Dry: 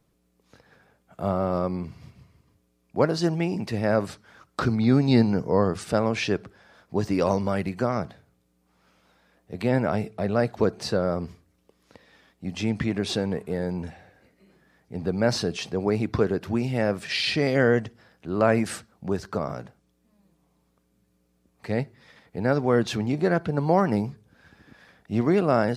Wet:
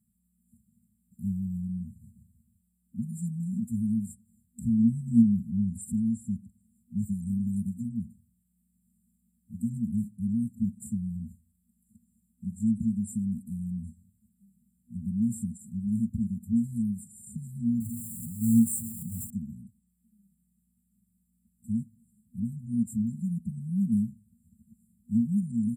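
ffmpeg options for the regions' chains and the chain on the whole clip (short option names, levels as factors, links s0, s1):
-filter_complex "[0:a]asettb=1/sr,asplit=3[s0][s1][s2];[s0]atrim=end=17.804[s3];[s1]atrim=start=17.8:end=19.3,asetpts=PTS-STARTPTS,afade=t=in:d=0.004:c=qsin,afade=t=out:st=1.496:d=0.004:c=qsin,aeval=exprs='val(0)+0.5*0.0668*sgn(val(0))':c=same,agate=range=0.501:threshold=0.0891:ratio=16:release=100:detection=peak,aecho=1:1:7.5:1,atrim=end_sample=66150[s4];[s2]atrim=start=19.296[s5];[s3][s4]acrossfade=d=0.004:c1=hsin:c2=qsin[s6];[s6][s5]acrossfade=d=0.004:c1=qsin:c2=hsin,highpass=90,afftfilt=real='re*(1-between(b*sr/4096,240,7100))':imag='im*(1-between(b*sr/4096,240,7100))':win_size=4096:overlap=0.75,aecho=1:1:3.6:0.67"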